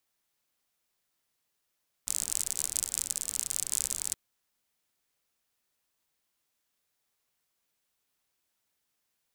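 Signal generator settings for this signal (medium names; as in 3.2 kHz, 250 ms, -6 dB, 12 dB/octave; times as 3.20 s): rain from filtered ticks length 2.07 s, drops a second 55, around 7.9 kHz, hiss -18.5 dB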